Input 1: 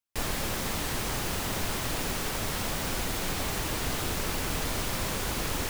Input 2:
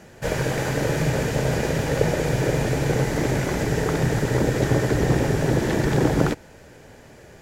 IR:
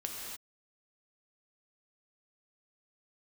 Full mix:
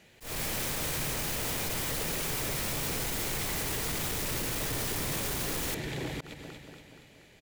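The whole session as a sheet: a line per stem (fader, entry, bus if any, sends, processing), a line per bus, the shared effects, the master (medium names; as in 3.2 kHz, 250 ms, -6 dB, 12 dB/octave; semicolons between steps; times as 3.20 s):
+2.0 dB, 0.05 s, no send, no echo send, peak limiter -25 dBFS, peak gain reduction 7.5 dB
-15.0 dB, 0.00 s, no send, echo send -11 dB, high-order bell 2.9 kHz +10.5 dB 1.3 oct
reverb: none
echo: feedback delay 237 ms, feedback 56%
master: treble shelf 5.7 kHz +8.5 dB; slow attack 215 ms; saturation -28.5 dBFS, distortion -11 dB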